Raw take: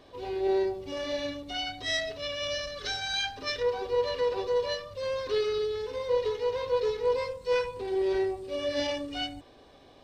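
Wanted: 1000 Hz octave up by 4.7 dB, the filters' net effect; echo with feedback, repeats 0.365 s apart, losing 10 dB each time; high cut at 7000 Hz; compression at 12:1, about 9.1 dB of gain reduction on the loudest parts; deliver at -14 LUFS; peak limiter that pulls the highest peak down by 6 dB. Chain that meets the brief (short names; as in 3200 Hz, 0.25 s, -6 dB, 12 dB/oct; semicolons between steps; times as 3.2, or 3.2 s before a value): LPF 7000 Hz; bell 1000 Hz +5.5 dB; compressor 12:1, threshold -30 dBFS; limiter -28.5 dBFS; feedback echo 0.365 s, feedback 32%, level -10 dB; gain +22 dB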